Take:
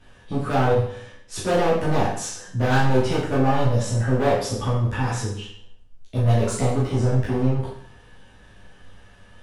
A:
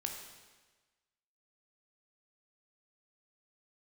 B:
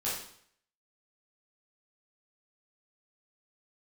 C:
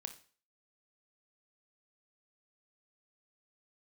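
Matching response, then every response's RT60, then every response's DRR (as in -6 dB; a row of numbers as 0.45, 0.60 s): B; 1.3, 0.65, 0.40 s; 2.0, -9.0, 7.5 dB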